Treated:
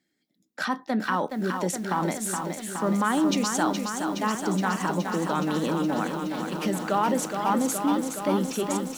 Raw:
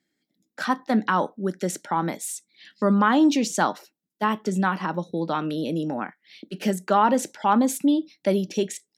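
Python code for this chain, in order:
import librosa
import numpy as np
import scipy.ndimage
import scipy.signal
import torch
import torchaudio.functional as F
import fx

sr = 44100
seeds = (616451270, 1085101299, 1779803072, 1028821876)

p1 = fx.over_compress(x, sr, threshold_db=-27.0, ratio=-1.0)
p2 = x + F.gain(torch.from_numpy(p1), -3.0).numpy()
p3 = fx.echo_crushed(p2, sr, ms=419, feedback_pct=80, bits=7, wet_db=-6.0)
y = F.gain(torch.from_numpy(p3), -6.5).numpy()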